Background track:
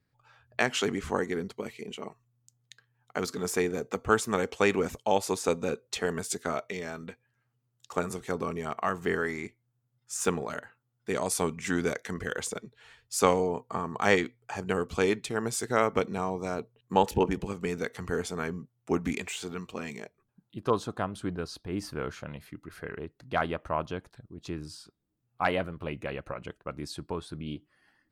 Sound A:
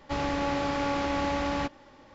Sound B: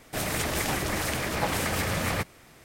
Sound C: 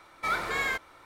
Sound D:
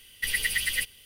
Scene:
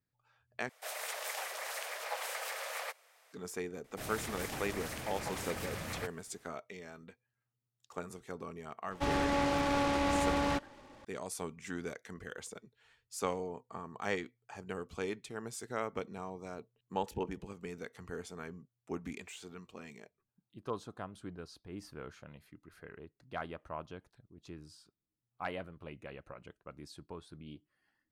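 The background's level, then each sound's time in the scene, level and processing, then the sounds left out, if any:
background track -12 dB
0.69 replace with B -10 dB + steep high-pass 490 Hz 48 dB/oct
3.84 add B -13 dB
8.91 add A -2 dB + noise-modulated delay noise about 1400 Hz, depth 0.046 ms
not used: C, D

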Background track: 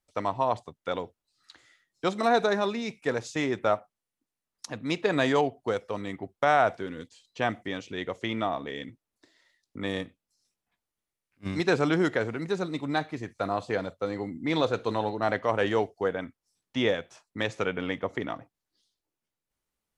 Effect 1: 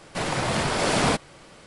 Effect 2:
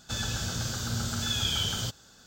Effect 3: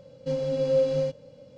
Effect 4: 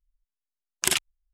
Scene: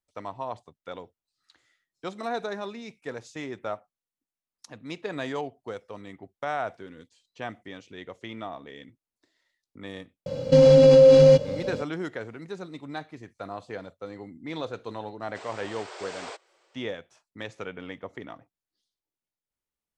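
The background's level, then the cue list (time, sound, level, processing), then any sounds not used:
background track -8 dB
10.26 add 3 -6.5 dB + maximiser +24.5 dB
15.2 add 1 -16 dB + brick-wall FIR band-pass 330–8700 Hz
not used: 2, 4

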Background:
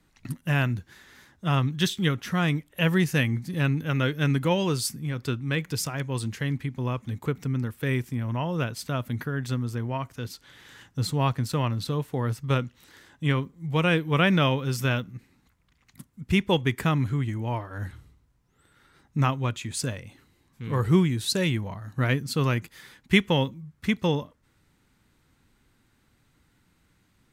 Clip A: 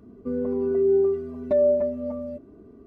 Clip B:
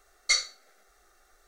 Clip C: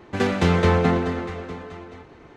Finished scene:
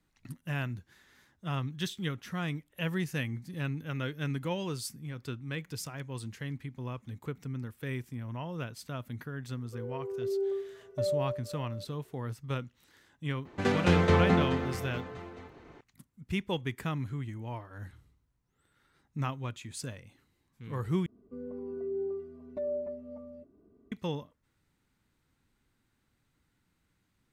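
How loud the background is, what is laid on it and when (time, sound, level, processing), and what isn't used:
background -10 dB
9.47 add A -11.5 dB + brick-wall FIR high-pass 350 Hz
13.45 add C -6 dB
21.06 replace with A -14.5 dB
not used: B

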